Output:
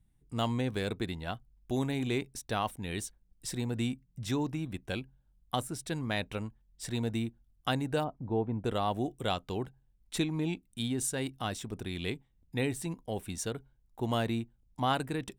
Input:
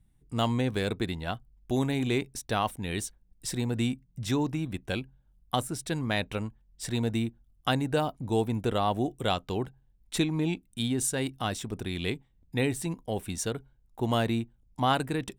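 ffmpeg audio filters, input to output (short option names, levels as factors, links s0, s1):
-filter_complex "[0:a]asplit=3[s0][s1][s2];[s0]afade=t=out:st=8.03:d=0.02[s3];[s1]lowpass=1300,afade=t=in:st=8.03:d=0.02,afade=t=out:st=8.64:d=0.02[s4];[s2]afade=t=in:st=8.64:d=0.02[s5];[s3][s4][s5]amix=inputs=3:normalize=0,volume=0.631"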